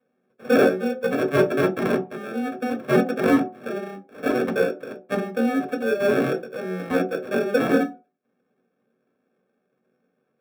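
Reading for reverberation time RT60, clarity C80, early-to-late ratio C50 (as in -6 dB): no single decay rate, 19.5 dB, 13.5 dB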